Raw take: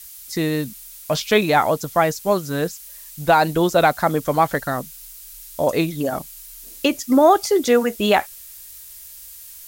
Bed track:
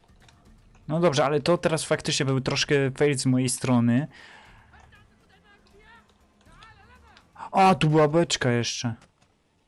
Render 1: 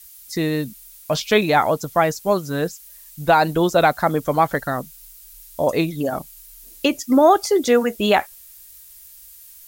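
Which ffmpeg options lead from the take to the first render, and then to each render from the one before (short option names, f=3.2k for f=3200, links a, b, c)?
-af "afftdn=nr=6:nf=-40"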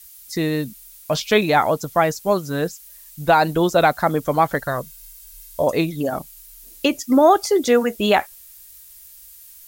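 -filter_complex "[0:a]asettb=1/sr,asplit=3[a][b][c];[a]atrim=end=4.674[d];[b]atrim=start=4.67:end=5.63,asetpts=PTS-STARTPTS,afade=t=in:d=0.004:c=qsin,afade=t=out:st=0.956:d=0.004:c=qsin,aecho=1:1:1.9:0.53,atrim=end_sample=42336[e];[c]atrim=start=5.626[f];[d][e]acrossfade=d=0.004:c1=hsin:c2=qsin[g];[g][f]acrossfade=d=0.004:c1=qsin:c2=hsin"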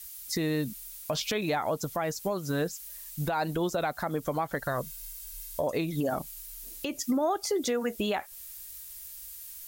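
-af "acompressor=threshold=-23dB:ratio=6,alimiter=limit=-19.5dB:level=0:latency=1:release=130"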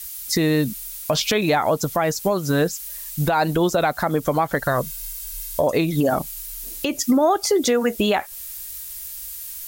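-af "volume=10dB"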